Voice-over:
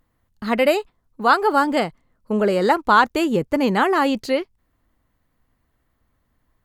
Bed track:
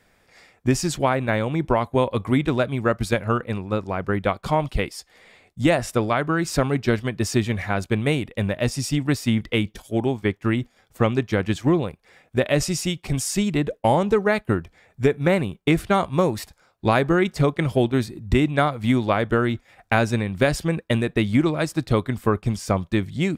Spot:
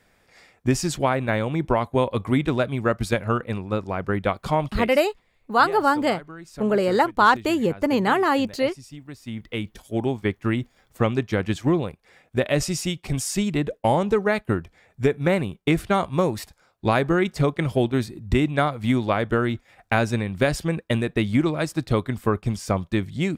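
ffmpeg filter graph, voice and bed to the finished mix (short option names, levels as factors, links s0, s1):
-filter_complex "[0:a]adelay=4300,volume=0.794[s0];[1:a]volume=5.96,afade=t=out:st=4.68:d=0.37:silence=0.141254,afade=t=in:st=9.18:d=0.88:silence=0.149624[s1];[s0][s1]amix=inputs=2:normalize=0"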